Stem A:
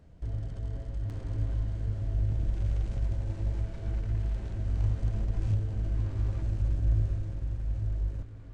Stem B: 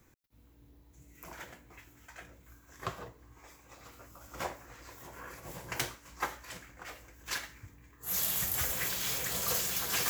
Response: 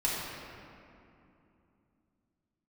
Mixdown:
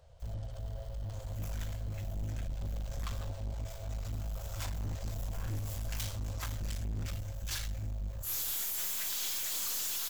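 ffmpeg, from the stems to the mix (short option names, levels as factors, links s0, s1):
-filter_complex "[0:a]volume=0.708[s0];[1:a]highpass=1400,alimiter=limit=0.0631:level=0:latency=1:release=100,adelay=200,volume=0.841[s1];[s0][s1]amix=inputs=2:normalize=0,firequalizer=gain_entry='entry(120,0);entry(220,-28);entry(530,8);entry(1900,0);entry(3300,9)':delay=0.05:min_phase=1,aeval=exprs='(tanh(44.7*val(0)+0.3)-tanh(0.3))/44.7':c=same"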